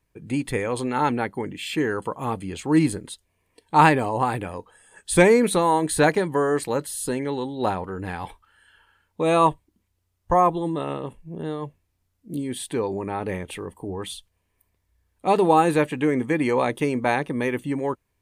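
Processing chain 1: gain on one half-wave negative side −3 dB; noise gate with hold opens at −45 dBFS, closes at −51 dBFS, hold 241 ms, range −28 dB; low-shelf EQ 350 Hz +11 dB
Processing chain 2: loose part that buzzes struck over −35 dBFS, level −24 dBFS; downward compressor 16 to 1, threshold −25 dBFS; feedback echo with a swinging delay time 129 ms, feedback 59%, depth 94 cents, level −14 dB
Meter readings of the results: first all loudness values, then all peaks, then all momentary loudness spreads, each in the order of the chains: −20.0, −30.5 LKFS; −1.0, −13.5 dBFS; 14, 8 LU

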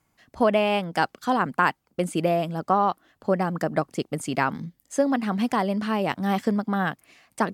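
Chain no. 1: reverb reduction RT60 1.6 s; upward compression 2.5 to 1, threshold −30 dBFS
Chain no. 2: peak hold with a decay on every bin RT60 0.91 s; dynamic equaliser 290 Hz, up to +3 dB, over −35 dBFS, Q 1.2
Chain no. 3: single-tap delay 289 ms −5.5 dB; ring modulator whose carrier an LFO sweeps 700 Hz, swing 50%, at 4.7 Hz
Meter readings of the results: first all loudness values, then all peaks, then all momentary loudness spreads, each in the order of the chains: −26.5, −21.5, −27.0 LKFS; −7.0, −4.0, −6.0 dBFS; 7, 5, 6 LU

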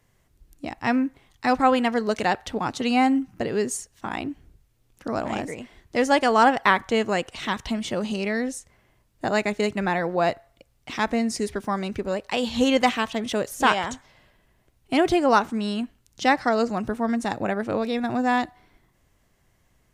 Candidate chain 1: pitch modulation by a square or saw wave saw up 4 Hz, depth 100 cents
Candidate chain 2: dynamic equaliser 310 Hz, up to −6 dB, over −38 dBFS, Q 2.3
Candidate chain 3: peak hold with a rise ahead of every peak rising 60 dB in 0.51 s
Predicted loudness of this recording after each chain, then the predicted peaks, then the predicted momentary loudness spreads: −24.0, −25.0, −22.5 LKFS; −4.5, −4.0, −2.5 dBFS; 12, 12, 12 LU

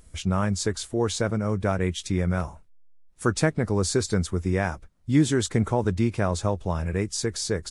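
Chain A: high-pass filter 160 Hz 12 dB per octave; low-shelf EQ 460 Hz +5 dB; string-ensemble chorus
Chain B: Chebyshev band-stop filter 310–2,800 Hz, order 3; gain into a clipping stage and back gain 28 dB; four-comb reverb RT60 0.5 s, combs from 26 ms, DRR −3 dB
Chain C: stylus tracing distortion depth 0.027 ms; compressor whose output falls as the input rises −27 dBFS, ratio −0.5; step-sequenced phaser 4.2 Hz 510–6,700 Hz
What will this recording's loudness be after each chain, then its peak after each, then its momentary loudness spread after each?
−27.5, −28.5, −31.5 LKFS; −7.5, −14.5, −12.0 dBFS; 7, 6, 7 LU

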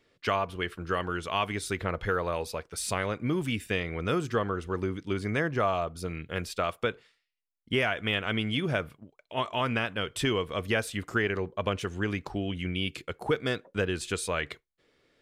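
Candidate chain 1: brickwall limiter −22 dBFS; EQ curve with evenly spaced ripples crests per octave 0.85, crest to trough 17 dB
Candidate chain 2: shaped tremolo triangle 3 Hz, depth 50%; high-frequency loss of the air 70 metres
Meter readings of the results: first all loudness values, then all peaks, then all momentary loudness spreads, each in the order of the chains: −30.0, −33.0 LKFS; −15.5, −16.0 dBFS; 4, 7 LU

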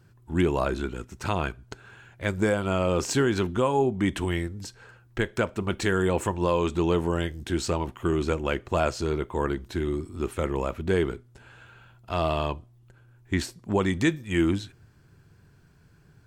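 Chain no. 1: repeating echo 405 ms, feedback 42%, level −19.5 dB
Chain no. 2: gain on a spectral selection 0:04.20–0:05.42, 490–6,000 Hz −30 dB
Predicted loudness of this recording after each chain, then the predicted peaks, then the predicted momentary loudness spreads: −27.0, −27.0 LKFS; −12.5, −12.5 dBFS; 14, 9 LU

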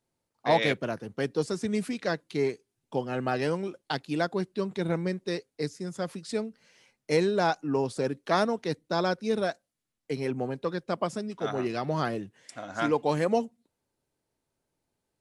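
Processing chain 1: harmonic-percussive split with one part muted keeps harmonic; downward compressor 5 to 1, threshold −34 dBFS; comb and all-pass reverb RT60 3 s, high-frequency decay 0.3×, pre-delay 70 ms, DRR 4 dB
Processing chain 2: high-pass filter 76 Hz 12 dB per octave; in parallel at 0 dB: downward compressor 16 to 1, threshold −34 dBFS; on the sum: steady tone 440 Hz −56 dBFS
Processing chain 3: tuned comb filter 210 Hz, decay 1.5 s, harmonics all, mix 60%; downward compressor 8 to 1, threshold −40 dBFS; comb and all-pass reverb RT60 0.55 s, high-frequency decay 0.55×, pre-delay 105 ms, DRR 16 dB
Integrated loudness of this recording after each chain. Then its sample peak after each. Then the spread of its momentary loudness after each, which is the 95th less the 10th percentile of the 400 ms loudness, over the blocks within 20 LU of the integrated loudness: −38.0, −27.5, −45.5 LKFS; −22.5, −9.0, −26.0 dBFS; 7, 8, 5 LU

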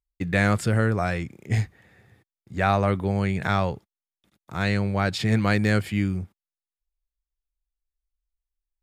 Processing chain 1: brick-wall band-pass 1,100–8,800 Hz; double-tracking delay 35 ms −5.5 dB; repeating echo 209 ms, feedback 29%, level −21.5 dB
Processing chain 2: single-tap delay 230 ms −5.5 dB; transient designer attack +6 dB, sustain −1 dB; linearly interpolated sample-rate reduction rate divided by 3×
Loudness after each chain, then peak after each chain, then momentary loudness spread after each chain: −30.0, −22.5 LKFS; −11.0, −2.0 dBFS; 11, 12 LU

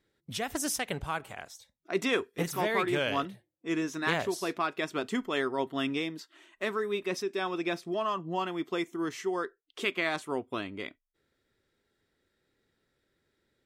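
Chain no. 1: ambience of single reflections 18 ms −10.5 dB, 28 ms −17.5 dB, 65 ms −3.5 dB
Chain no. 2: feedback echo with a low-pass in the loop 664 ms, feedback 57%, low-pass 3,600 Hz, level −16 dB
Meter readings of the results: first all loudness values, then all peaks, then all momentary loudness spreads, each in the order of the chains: −30.5, −32.0 LKFS; −12.0, −14.0 dBFS; 10, 13 LU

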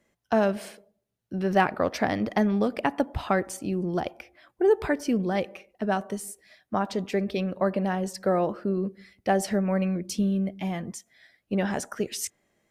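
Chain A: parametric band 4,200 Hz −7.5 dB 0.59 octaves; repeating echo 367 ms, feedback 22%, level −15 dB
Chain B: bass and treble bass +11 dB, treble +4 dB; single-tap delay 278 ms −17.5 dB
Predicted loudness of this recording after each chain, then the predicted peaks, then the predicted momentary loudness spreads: −27.5, −22.5 LKFS; −9.0, −5.5 dBFS; 12, 12 LU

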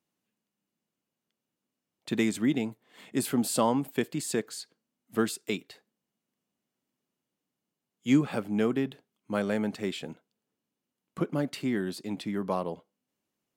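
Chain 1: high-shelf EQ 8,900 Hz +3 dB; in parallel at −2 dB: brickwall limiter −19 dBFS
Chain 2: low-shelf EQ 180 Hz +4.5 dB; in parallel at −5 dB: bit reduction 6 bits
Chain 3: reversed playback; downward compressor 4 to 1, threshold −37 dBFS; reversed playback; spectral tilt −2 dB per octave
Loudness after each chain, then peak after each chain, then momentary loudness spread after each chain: −26.0, −25.0, −38.0 LKFS; −9.0, −6.5, −23.0 dBFS; 12, 13, 12 LU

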